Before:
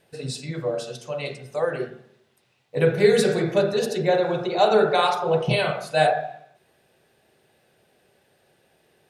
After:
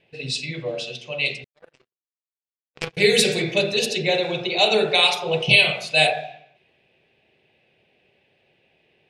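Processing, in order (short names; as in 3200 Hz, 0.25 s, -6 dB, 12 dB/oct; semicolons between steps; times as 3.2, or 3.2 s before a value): resonant high shelf 1900 Hz +9.5 dB, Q 3; low-pass opened by the level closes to 1800 Hz, open at -14.5 dBFS; 1.44–2.97 power-law curve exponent 3; gain -1.5 dB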